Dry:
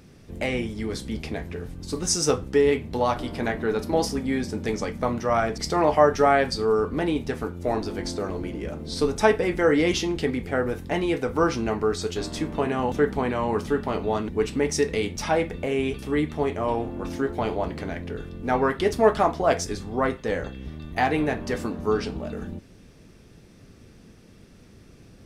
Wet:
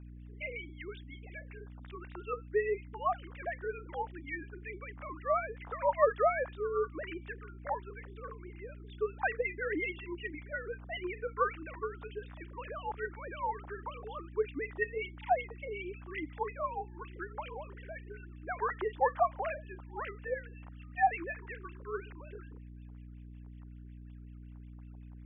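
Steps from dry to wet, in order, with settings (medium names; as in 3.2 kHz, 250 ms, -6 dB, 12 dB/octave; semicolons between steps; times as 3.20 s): formants replaced by sine waves; LFO band-pass sine 5.4 Hz 820–2900 Hz; hum 60 Hz, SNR 11 dB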